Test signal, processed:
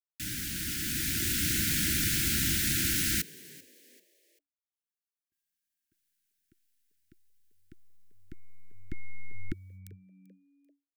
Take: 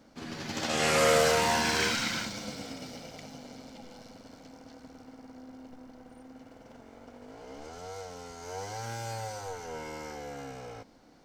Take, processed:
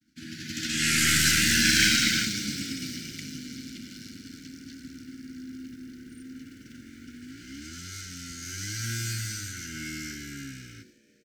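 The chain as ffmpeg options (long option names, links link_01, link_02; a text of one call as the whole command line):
ffmpeg -i in.wav -filter_complex "[0:a]highpass=57,agate=range=-33dB:threshold=-51dB:ratio=3:detection=peak,highshelf=frequency=6900:gain=6.5,dynaudnorm=framelen=190:gausssize=11:maxgain=8dB,aeval=exprs='0.668*(cos(1*acos(clip(val(0)/0.668,-1,1)))-cos(1*PI/2))+0.0531*(cos(4*acos(clip(val(0)/0.668,-1,1)))-cos(4*PI/2))':channel_layout=same,asuperstop=centerf=710:order=20:qfactor=0.66,asplit=4[link_01][link_02][link_03][link_04];[link_02]adelay=390,afreqshift=94,volume=-21.5dB[link_05];[link_03]adelay=780,afreqshift=188,volume=-30.6dB[link_06];[link_04]adelay=1170,afreqshift=282,volume=-39.7dB[link_07];[link_01][link_05][link_06][link_07]amix=inputs=4:normalize=0" out.wav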